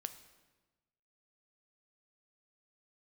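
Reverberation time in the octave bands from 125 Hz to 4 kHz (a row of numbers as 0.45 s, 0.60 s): 1.5 s, 1.4 s, 1.3 s, 1.2 s, 1.1 s, 0.95 s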